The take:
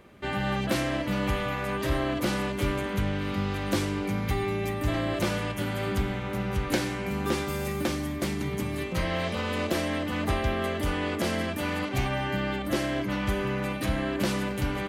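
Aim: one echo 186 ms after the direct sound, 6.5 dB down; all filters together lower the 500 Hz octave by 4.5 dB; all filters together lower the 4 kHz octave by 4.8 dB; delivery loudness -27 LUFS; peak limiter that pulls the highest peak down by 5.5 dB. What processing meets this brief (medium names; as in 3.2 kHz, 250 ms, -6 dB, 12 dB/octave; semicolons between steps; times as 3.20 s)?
peaking EQ 500 Hz -6 dB; peaking EQ 4 kHz -6.5 dB; peak limiter -22 dBFS; delay 186 ms -6.5 dB; trim +4 dB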